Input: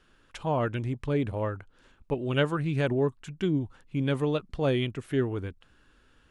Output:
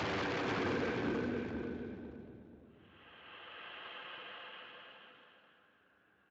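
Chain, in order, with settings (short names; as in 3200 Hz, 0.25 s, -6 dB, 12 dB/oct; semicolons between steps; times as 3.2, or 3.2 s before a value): octaver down 2 oct, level -1 dB; three-band isolator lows -16 dB, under 250 Hz, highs -15 dB, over 3000 Hz; gate -55 dBFS, range -19 dB; Paulstretch 27×, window 0.10 s, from 5.48; dynamic EQ 220 Hz, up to +4 dB, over -60 dBFS, Q 2.4; in parallel at -2.5 dB: compressor 16:1, threshold -52 dBFS, peak gain reduction 17 dB; on the sum: low-pass opened by the level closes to 3000 Hz, open at -38.5 dBFS; wavefolder -40 dBFS; feedback echo 0.483 s, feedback 22%, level -5 dB; on a send at -23.5 dB: reverb RT60 1.4 s, pre-delay 0.103 s; on the sum: gain +9 dB; Speex 34 kbps 16000 Hz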